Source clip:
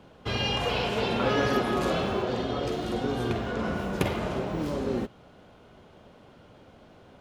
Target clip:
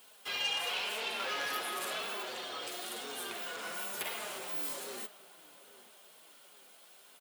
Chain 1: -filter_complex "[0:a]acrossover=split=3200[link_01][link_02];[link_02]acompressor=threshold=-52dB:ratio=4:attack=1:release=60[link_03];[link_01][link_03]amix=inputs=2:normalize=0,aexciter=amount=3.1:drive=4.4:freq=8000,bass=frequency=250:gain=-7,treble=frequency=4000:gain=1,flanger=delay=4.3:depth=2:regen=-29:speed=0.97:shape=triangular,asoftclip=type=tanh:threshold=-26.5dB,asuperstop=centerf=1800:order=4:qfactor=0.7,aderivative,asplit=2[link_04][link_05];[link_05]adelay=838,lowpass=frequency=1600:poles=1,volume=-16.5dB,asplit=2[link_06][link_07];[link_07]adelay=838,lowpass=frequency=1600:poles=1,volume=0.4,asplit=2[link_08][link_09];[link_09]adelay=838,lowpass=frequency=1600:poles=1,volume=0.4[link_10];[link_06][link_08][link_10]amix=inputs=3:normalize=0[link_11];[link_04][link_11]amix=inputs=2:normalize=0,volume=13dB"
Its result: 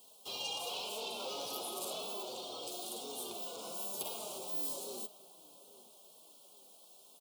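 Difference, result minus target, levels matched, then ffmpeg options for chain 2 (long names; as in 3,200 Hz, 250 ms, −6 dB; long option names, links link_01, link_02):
2,000 Hz band −11.0 dB
-filter_complex "[0:a]acrossover=split=3200[link_01][link_02];[link_02]acompressor=threshold=-52dB:ratio=4:attack=1:release=60[link_03];[link_01][link_03]amix=inputs=2:normalize=0,aexciter=amount=3.1:drive=4.4:freq=8000,bass=frequency=250:gain=-7,treble=frequency=4000:gain=1,flanger=delay=4.3:depth=2:regen=-29:speed=0.97:shape=triangular,asoftclip=type=tanh:threshold=-26.5dB,aderivative,asplit=2[link_04][link_05];[link_05]adelay=838,lowpass=frequency=1600:poles=1,volume=-16.5dB,asplit=2[link_06][link_07];[link_07]adelay=838,lowpass=frequency=1600:poles=1,volume=0.4,asplit=2[link_08][link_09];[link_09]adelay=838,lowpass=frequency=1600:poles=1,volume=0.4[link_10];[link_06][link_08][link_10]amix=inputs=3:normalize=0[link_11];[link_04][link_11]amix=inputs=2:normalize=0,volume=13dB"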